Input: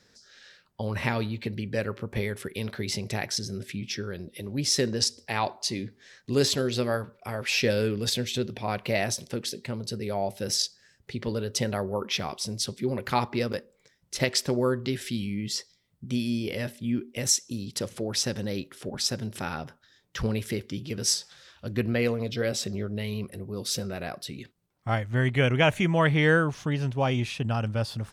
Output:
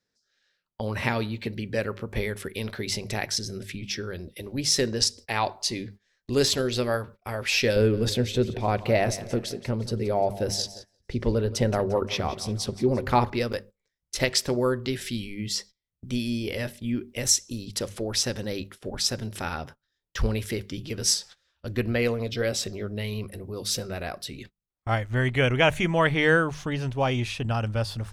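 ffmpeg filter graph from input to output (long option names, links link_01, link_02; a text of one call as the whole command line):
ffmpeg -i in.wav -filter_complex "[0:a]asettb=1/sr,asplit=3[link_01][link_02][link_03];[link_01]atrim=end=7.764[link_04];[link_02]atrim=start=7.76:end=13.3,asetpts=PTS-STARTPTS,afade=type=in:duration=0.004:curve=qsin,afade=type=out:start_time=5.536:duration=0.004:curve=qsin,tiltshelf=frequency=1400:gain=5.5,aecho=1:1:174|348|522|696:0.158|0.0761|0.0365|0.0175,atrim=end_sample=244314[link_05];[link_03]atrim=start=13.296[link_06];[link_04][link_05]acrossfade=duration=0.004:curve1=hsin:curve2=qsin[link_07];[link_07][link_06]acrossfade=duration=0.004:curve1=qsin:curve2=hsin,bandreject=frequency=50:width_type=h:width=6,bandreject=frequency=100:width_type=h:width=6,bandreject=frequency=150:width_type=h:width=6,bandreject=frequency=200:width_type=h:width=6,agate=range=-21dB:threshold=-44dB:ratio=16:detection=peak,asubboost=boost=6.5:cutoff=55,volume=2dB" out.wav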